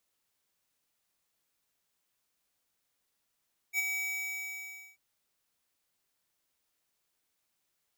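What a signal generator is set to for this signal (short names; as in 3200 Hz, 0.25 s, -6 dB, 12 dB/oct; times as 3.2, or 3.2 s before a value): ADSR square 2280 Hz, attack 57 ms, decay 24 ms, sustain -5.5 dB, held 0.20 s, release 1.04 s -28 dBFS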